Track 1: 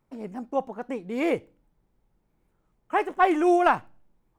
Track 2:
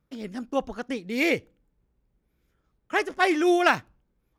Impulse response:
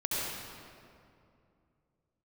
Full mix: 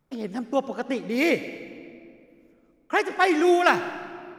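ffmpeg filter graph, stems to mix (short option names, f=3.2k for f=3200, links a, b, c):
-filter_complex "[0:a]acompressor=threshold=-31dB:ratio=6,volume=-1dB[a];[1:a]highpass=f=120:w=0.5412,highpass=f=120:w=1.3066,volume=-1dB,asplit=2[b][c];[c]volume=-16.5dB[d];[2:a]atrim=start_sample=2205[e];[d][e]afir=irnorm=-1:irlink=0[f];[a][b][f]amix=inputs=3:normalize=0"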